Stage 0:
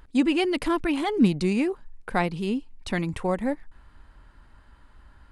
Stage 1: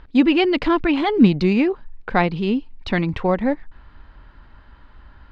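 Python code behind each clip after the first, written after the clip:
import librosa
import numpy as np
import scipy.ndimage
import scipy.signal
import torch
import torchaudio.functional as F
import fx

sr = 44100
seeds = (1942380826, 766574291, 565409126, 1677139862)

y = scipy.signal.sosfilt(scipy.signal.butter(4, 4500.0, 'lowpass', fs=sr, output='sos'), x)
y = y * 10.0 ** (6.5 / 20.0)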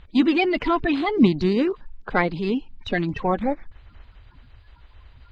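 y = fx.spec_quant(x, sr, step_db=30)
y = y * 10.0 ** (-2.5 / 20.0)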